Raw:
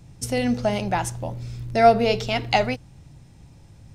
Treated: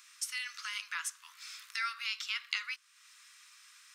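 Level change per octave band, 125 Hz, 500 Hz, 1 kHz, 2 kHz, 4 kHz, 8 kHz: under -40 dB, under -40 dB, -22.5 dB, -7.0 dB, -6.5 dB, -5.0 dB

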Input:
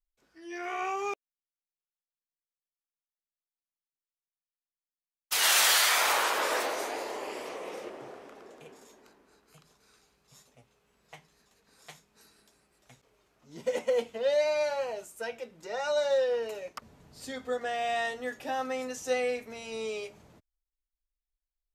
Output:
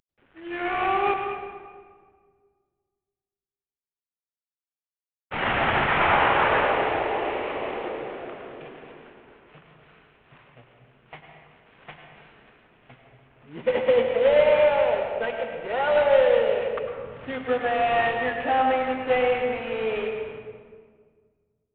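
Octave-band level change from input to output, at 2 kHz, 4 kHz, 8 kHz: +6.0 dB, -3.5 dB, under -40 dB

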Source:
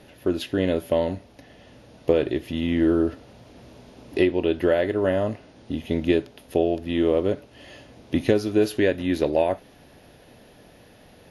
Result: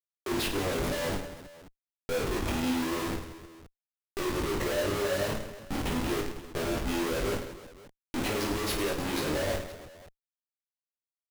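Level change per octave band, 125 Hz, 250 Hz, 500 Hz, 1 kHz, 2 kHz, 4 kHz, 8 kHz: -5.0 dB, -9.0 dB, -10.0 dB, -1.0 dB, -1.5 dB, +1.0 dB, n/a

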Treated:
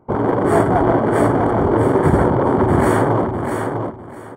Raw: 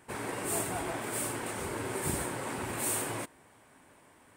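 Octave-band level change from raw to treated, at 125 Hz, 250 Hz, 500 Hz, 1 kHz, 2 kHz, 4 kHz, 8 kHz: +23.0 dB, +23.0 dB, +22.5 dB, +20.0 dB, +12.0 dB, n/a, -5.0 dB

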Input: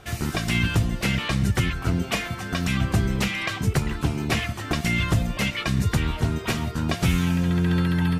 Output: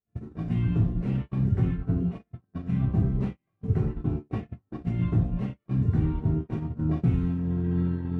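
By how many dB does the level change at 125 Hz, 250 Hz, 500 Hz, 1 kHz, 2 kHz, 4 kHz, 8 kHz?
-2.0 dB, -3.0 dB, -6.0 dB, -13.5 dB, -23.5 dB, under -25 dB, under -35 dB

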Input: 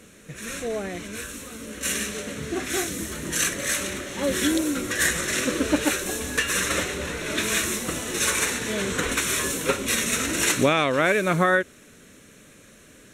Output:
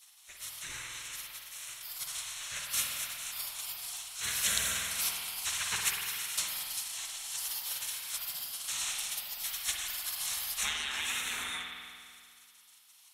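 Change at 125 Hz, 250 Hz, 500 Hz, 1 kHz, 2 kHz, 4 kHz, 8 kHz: -23.0, -32.5, -31.0, -16.0, -13.5, -5.5, -7.5 dB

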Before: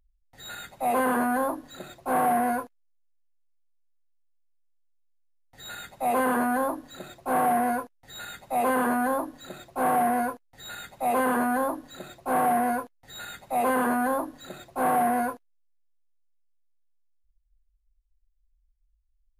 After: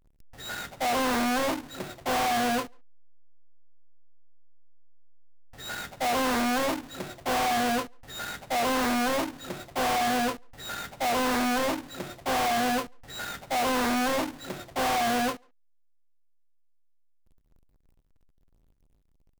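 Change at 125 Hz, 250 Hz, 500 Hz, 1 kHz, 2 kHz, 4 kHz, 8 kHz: +3.0, -1.0, -1.5, -2.5, +1.5, +11.5, +4.0 dB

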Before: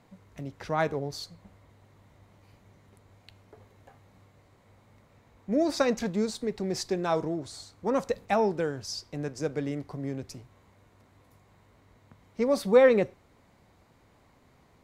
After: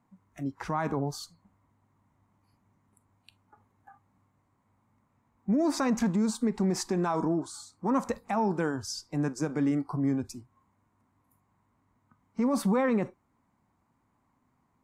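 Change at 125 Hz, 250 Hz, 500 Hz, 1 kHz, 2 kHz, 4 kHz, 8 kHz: +3.5, +4.0, -7.0, 0.0, -3.5, -3.0, +2.0 dB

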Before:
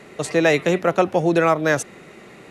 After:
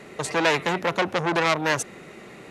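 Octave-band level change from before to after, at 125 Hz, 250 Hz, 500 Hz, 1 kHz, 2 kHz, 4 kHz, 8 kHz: -6.0, -7.5, -7.5, -1.5, -1.0, +3.5, -0.5 dB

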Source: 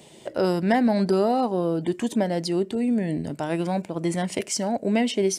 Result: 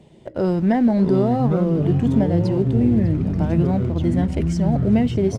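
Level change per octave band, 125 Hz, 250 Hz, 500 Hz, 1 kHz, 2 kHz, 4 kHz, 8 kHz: +12.5 dB, +6.0 dB, +1.5 dB, -1.5 dB, -4.0 dB, n/a, under -10 dB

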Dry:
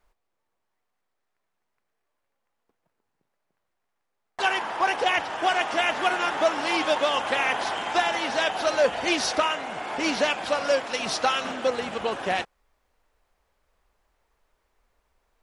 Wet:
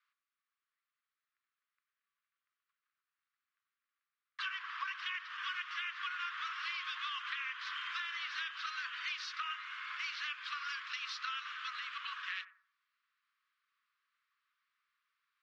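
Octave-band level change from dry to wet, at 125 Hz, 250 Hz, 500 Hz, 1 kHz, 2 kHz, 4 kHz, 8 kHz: under -40 dB, under -40 dB, under -40 dB, -18.0 dB, -11.5 dB, -12.0 dB, -22.0 dB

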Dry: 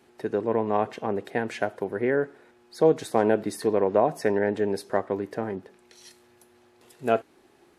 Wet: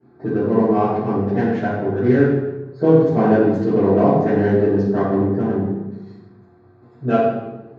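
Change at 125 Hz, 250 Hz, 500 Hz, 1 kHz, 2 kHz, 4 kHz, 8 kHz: +16.5 dB, +13.0 dB, +7.0 dB, +6.0 dB, +4.0 dB, n/a, under -10 dB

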